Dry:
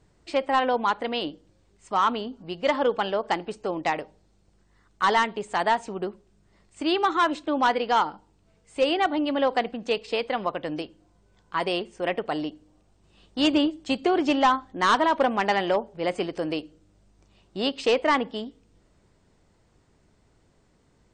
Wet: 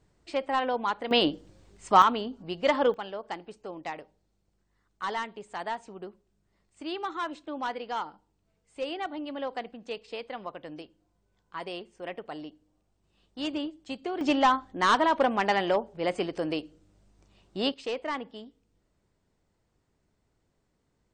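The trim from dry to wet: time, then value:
-5 dB
from 1.11 s +6 dB
from 2.02 s -1 dB
from 2.94 s -11 dB
from 14.21 s -2 dB
from 17.74 s -11 dB

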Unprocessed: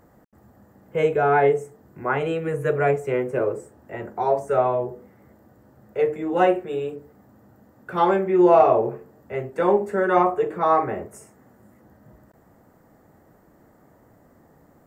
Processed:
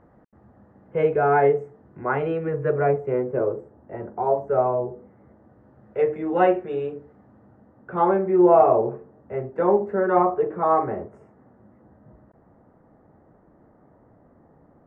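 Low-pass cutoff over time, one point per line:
2.25 s 1.8 kHz
3.17 s 1.1 kHz
4.86 s 1.1 kHz
6.10 s 2.3 kHz
6.95 s 2.3 kHz
7.90 s 1.3 kHz

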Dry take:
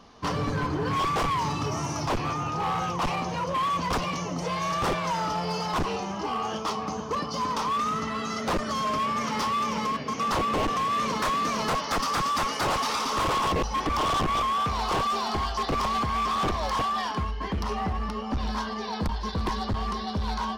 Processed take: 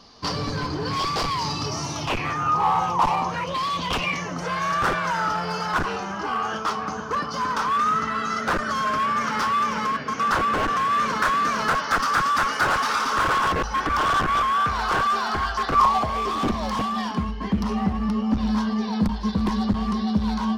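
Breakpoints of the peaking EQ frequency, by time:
peaking EQ +14 dB 0.54 oct
1.83 s 4.7 kHz
2.66 s 930 Hz
3.25 s 930 Hz
3.60 s 5.1 kHz
4.35 s 1.5 kHz
15.70 s 1.5 kHz
16.54 s 210 Hz

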